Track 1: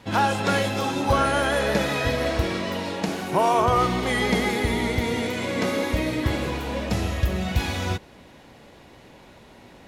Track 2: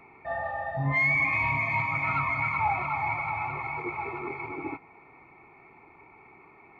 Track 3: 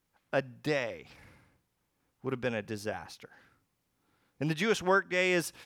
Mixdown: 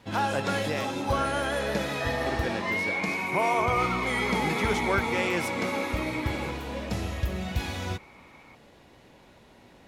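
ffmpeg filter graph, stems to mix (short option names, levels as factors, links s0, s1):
-filter_complex "[0:a]volume=0.501[s0];[1:a]highpass=830,acompressor=threshold=0.0316:ratio=6,adelay=1750,volume=1.19[s1];[2:a]highpass=f=110:w=0.5412,highpass=f=110:w=1.3066,volume=0.841[s2];[s0][s1][s2]amix=inputs=3:normalize=0"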